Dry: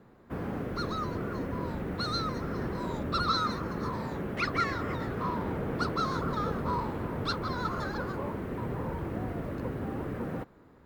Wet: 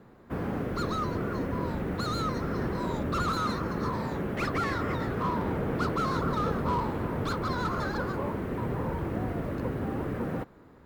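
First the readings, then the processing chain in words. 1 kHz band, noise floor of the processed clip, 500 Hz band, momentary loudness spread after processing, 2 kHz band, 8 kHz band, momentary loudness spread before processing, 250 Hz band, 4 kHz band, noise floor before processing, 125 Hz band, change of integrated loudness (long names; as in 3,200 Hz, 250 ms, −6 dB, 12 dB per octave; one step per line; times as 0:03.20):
+1.5 dB, −53 dBFS, +3.0 dB, 4 LU, +1.0 dB, +3.5 dB, 6 LU, +3.0 dB, −3.5 dB, −56 dBFS, +3.0 dB, +2.0 dB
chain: slew-rate limiting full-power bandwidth 38 Hz
level +3 dB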